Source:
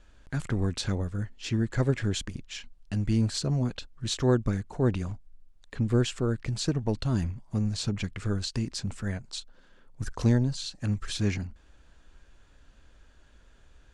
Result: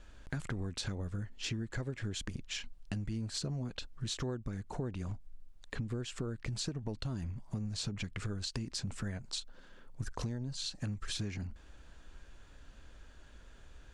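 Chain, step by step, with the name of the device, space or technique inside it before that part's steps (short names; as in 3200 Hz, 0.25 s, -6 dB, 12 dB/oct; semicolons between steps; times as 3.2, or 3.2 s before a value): serial compression, peaks first (compressor, threshold -32 dBFS, peak gain reduction 14 dB; compressor 2:1, threshold -39 dBFS, peak gain reduction 6 dB); gain +2 dB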